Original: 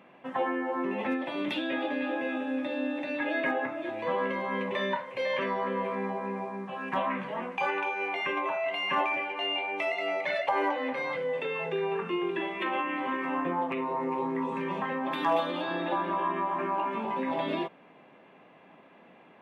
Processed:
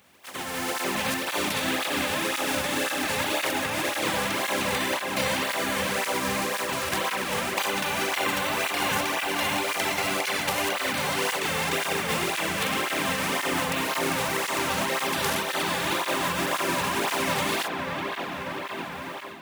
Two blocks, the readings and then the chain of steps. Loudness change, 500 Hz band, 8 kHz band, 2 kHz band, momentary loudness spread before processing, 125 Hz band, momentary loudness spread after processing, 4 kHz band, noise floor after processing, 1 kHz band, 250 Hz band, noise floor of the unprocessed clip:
+4.5 dB, +1.0 dB, no reading, +6.5 dB, 4 LU, +8.5 dB, 4 LU, +12.0 dB, -35 dBFS, +2.5 dB, +1.0 dB, -56 dBFS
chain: spectral contrast reduction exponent 0.28; compression, threshold -33 dBFS, peak gain reduction 11 dB; peaking EQ 80 Hz +13.5 dB 0.44 oct; on a send: feedback echo behind a low-pass 595 ms, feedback 75%, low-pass 2.7 kHz, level -5 dB; on the sum: level rider gain up to 11 dB; cancelling through-zero flanger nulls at 1.9 Hz, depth 3.3 ms

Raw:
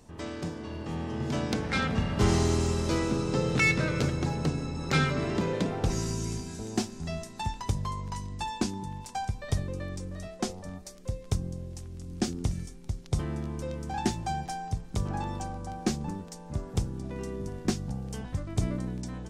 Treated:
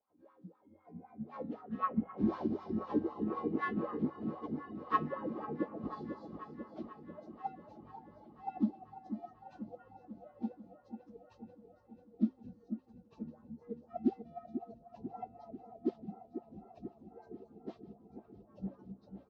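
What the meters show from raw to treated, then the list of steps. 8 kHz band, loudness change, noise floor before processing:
under -40 dB, -8.5 dB, -46 dBFS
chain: frequency axis rescaled in octaves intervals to 89%; spectral noise reduction 12 dB; comb 3.8 ms, depth 37%; wah-wah 3.9 Hz 210–1200 Hz, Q 5.7; delay with an opening low-pass 492 ms, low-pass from 750 Hz, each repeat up 1 oct, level -6 dB; upward expansion 1.5:1, over -48 dBFS; trim +6 dB

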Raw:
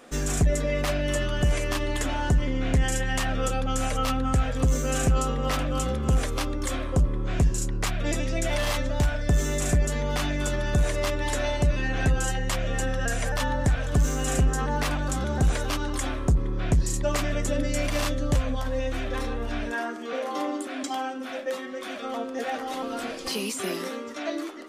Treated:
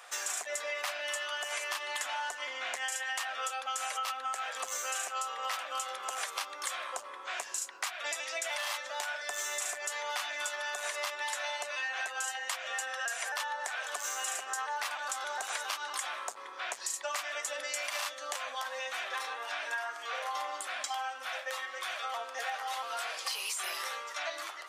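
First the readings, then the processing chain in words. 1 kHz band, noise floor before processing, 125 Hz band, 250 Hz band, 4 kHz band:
-3.5 dB, -35 dBFS, under -40 dB, under -35 dB, -2.5 dB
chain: high-pass 790 Hz 24 dB/octave; compression, threshold -35 dBFS, peak gain reduction 9 dB; trim +2.5 dB

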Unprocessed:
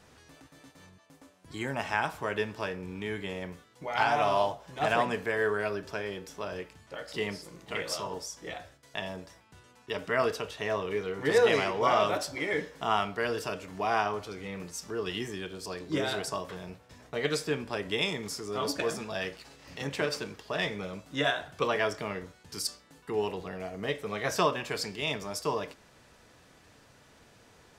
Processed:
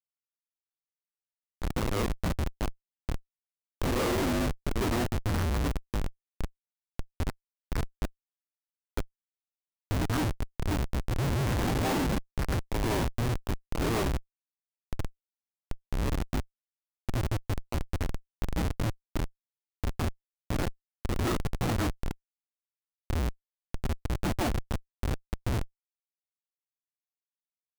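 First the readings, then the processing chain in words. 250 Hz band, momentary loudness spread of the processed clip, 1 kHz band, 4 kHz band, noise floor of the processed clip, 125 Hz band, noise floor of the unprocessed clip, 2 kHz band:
+4.0 dB, 12 LU, -6.0 dB, -5.5 dB, under -85 dBFS, +10.5 dB, -59 dBFS, -7.0 dB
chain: mistuned SSB -350 Hz 340–2100 Hz; reverse echo 164 ms -7.5 dB; Schmitt trigger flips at -28.5 dBFS; trim +6 dB

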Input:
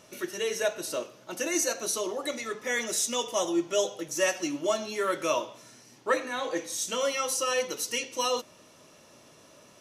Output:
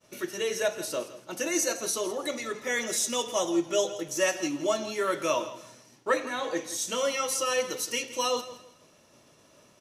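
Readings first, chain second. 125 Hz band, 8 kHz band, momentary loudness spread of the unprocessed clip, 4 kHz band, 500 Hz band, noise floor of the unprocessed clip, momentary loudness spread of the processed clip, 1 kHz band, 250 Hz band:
+2.0 dB, 0.0 dB, 7 LU, 0.0 dB, +0.5 dB, -56 dBFS, 7 LU, 0.0 dB, +1.0 dB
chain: expander -50 dBFS; bass shelf 140 Hz +4.5 dB; on a send: feedback delay 165 ms, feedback 27%, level -15 dB

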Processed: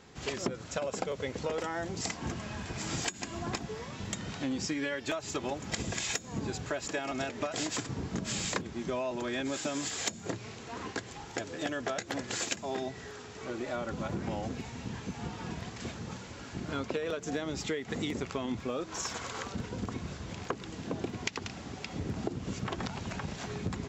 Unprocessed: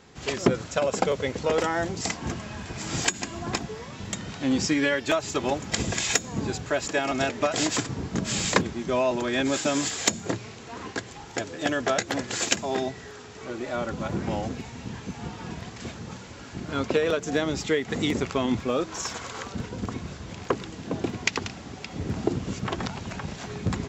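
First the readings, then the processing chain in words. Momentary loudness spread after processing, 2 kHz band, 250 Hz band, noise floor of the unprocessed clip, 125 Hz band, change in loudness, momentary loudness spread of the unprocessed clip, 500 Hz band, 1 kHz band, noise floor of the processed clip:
7 LU, -8.0 dB, -7.5 dB, -43 dBFS, -6.0 dB, -8.0 dB, 13 LU, -9.0 dB, -8.0 dB, -46 dBFS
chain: compression 4:1, threshold -29 dBFS, peak gain reduction 12.5 dB; trim -2.5 dB

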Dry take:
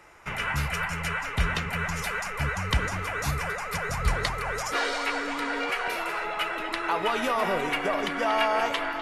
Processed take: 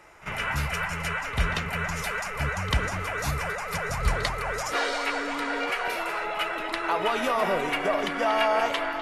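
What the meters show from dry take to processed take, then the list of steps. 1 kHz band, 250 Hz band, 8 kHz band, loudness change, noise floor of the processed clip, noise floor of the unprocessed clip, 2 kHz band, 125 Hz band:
+0.5 dB, 0.0 dB, 0.0 dB, +0.5 dB, -34 dBFS, -34 dBFS, 0.0 dB, 0.0 dB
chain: peaking EQ 620 Hz +3 dB 0.43 oct; pre-echo 45 ms -15.5 dB

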